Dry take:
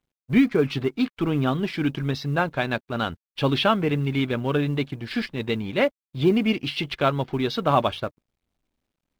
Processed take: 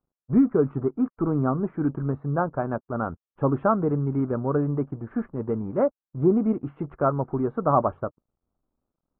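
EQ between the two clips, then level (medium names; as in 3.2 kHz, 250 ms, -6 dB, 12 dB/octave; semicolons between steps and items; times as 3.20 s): elliptic low-pass 1.3 kHz, stop band 80 dB; 0.0 dB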